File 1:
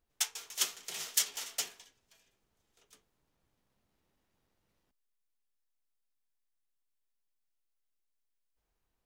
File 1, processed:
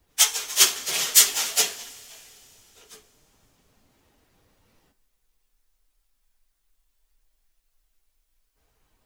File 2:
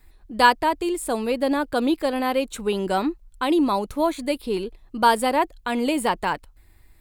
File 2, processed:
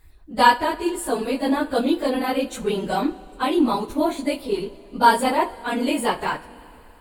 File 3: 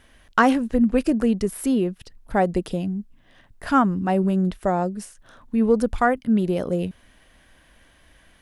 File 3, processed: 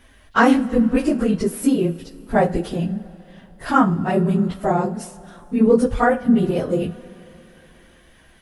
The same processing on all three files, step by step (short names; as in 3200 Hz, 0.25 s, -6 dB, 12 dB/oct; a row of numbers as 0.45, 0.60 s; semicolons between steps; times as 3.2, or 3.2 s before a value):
phase scrambler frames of 50 ms; two-slope reverb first 0.3 s, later 3.4 s, from -18 dB, DRR 10 dB; normalise peaks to -1.5 dBFS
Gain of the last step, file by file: +15.0, 0.0, +2.5 dB